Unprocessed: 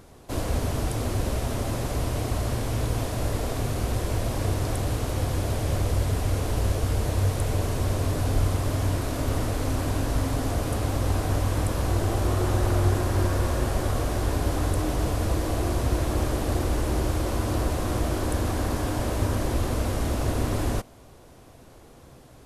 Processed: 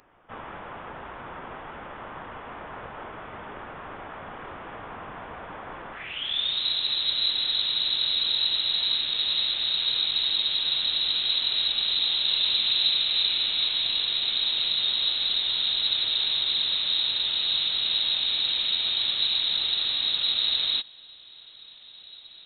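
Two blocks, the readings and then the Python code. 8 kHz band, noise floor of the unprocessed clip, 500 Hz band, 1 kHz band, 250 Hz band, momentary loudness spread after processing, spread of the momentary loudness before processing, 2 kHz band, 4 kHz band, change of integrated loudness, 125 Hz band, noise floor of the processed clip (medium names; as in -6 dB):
under -40 dB, -49 dBFS, -16.0 dB, -7.5 dB, under -15 dB, 18 LU, 3 LU, +0.5 dB, +19.5 dB, +4.0 dB, under -25 dB, -48 dBFS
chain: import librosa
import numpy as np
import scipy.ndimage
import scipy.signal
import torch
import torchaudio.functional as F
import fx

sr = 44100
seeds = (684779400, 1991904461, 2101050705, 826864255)

y = fx.filter_sweep_highpass(x, sr, from_hz=3000.0, to_hz=160.0, start_s=5.91, end_s=6.64, q=3.1)
y = fx.freq_invert(y, sr, carrier_hz=4000)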